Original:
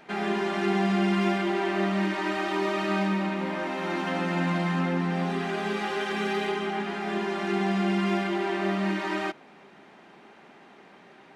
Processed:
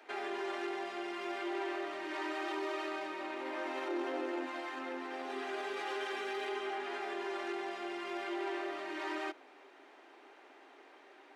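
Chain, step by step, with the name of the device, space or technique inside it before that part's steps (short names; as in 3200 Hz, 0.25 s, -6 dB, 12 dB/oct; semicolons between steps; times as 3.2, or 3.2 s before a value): 3.88–4.46 bell 400 Hz +11.5 dB 1.2 oct; soft clipper into limiter (soft clip -16.5 dBFS, distortion -21 dB; limiter -24.5 dBFS, peak gain reduction 7.5 dB); steep high-pass 270 Hz 72 dB/oct; gain -5.5 dB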